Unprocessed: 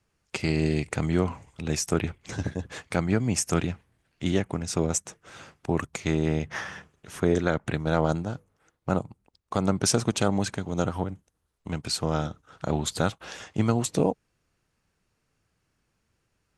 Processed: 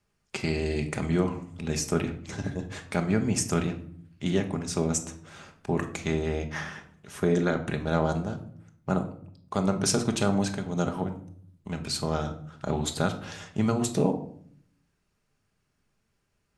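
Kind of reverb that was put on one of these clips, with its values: shoebox room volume 890 m³, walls furnished, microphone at 1.3 m; gain -2.5 dB

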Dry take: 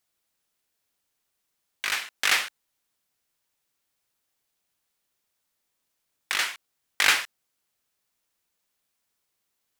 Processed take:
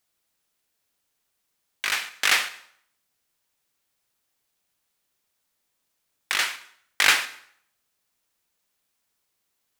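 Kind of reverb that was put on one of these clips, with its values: plate-style reverb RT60 0.63 s, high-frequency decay 0.85×, pre-delay 90 ms, DRR 17.5 dB; gain +2 dB

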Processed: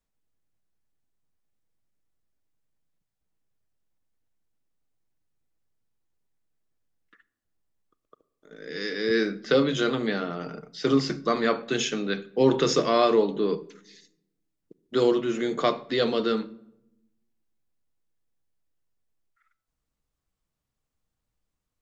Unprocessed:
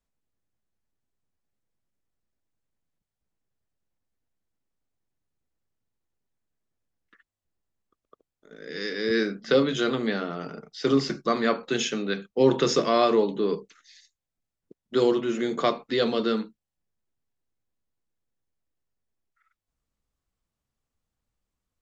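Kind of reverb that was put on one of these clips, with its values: shoebox room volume 2700 m³, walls furnished, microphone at 0.51 m

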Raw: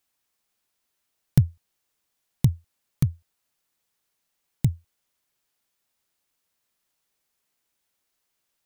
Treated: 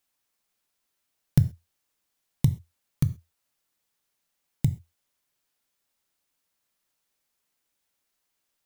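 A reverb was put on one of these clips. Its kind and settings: non-linear reverb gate 0.15 s falling, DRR 11.5 dB; gain -1.5 dB

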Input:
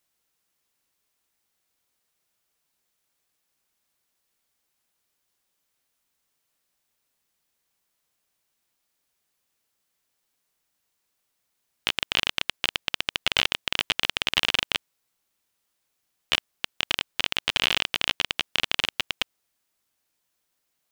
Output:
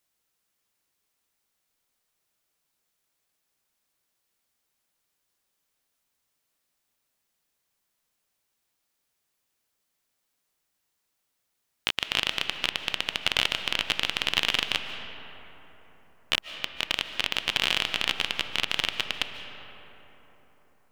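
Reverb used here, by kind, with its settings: digital reverb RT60 4.2 s, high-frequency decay 0.4×, pre-delay 0.105 s, DRR 8 dB; gain -1.5 dB

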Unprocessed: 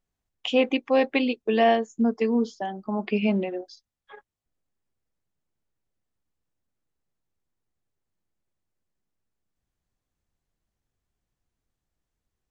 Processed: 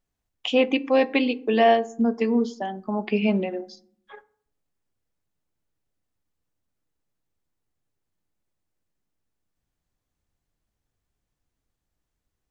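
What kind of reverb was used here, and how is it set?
FDN reverb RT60 0.6 s, low-frequency decay 1.55×, high-frequency decay 0.5×, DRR 15 dB; gain +1.5 dB

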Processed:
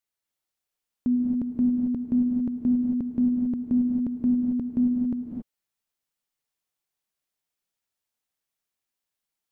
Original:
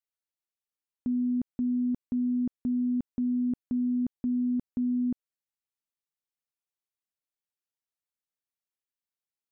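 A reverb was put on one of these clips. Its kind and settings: non-linear reverb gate 0.3 s rising, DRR 1 dB; gain +5 dB

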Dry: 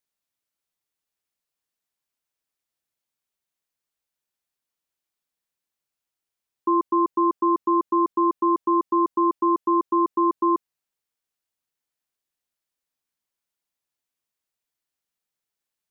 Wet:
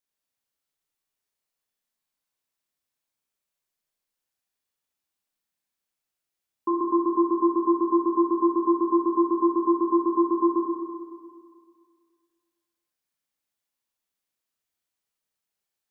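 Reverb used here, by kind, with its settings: Schroeder reverb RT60 2 s, combs from 29 ms, DRR -2 dB; gain -3.5 dB

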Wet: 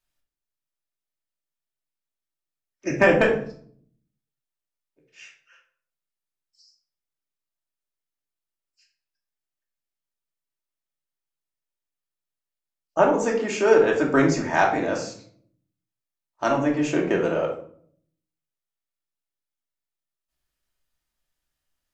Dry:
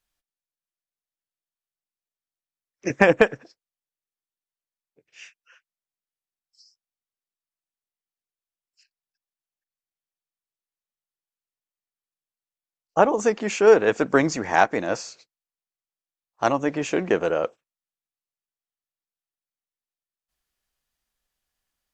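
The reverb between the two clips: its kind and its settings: shoebox room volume 730 m³, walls furnished, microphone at 2.7 m; gain -4 dB

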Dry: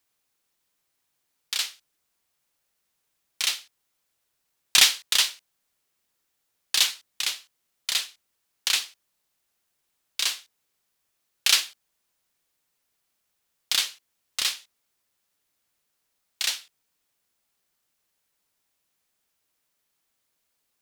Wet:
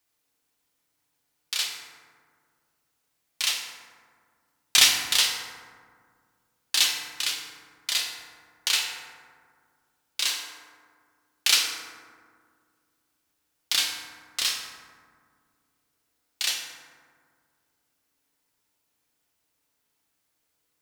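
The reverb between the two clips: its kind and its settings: FDN reverb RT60 1.9 s, low-frequency decay 1.45×, high-frequency decay 0.4×, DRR 0 dB; gain -1.5 dB

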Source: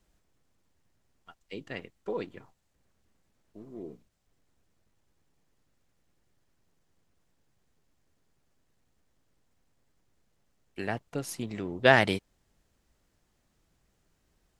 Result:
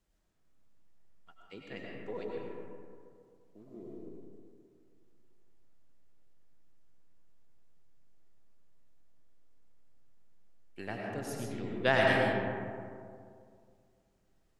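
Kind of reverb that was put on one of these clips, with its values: digital reverb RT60 2.3 s, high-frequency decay 0.35×, pre-delay 65 ms, DRR -2.5 dB; gain -8 dB

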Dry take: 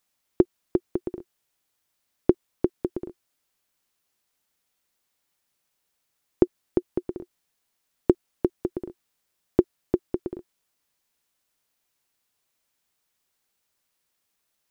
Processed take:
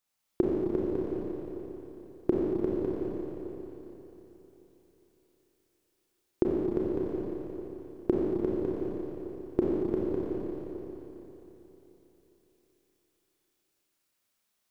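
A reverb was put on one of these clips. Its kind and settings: Schroeder reverb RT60 3.7 s, combs from 29 ms, DRR -5.5 dB; gain -8 dB

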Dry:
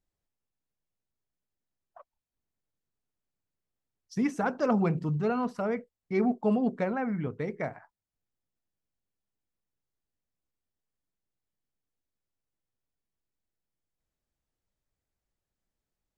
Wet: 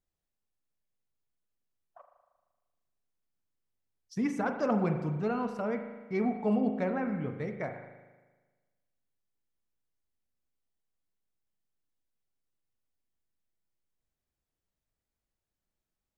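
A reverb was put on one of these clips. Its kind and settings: spring tank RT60 1.3 s, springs 38 ms, chirp 65 ms, DRR 6 dB; gain -3 dB

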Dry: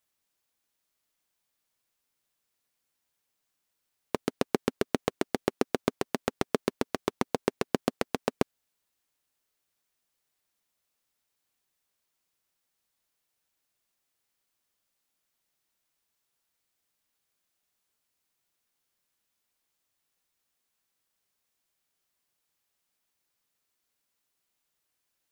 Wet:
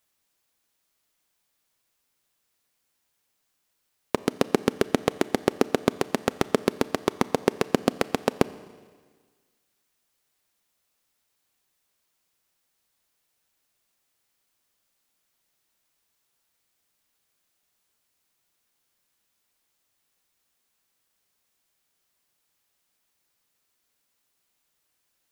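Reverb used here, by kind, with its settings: Schroeder reverb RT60 1.6 s, combs from 28 ms, DRR 17 dB; gain +5.5 dB

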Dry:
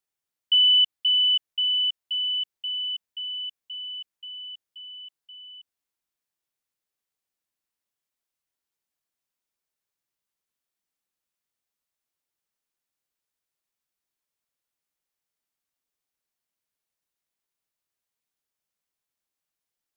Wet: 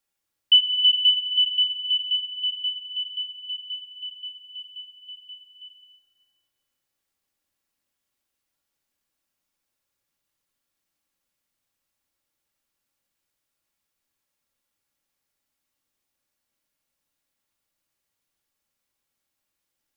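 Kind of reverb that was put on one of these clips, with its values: shoebox room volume 3500 m³, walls mixed, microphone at 2.3 m; gain +4 dB

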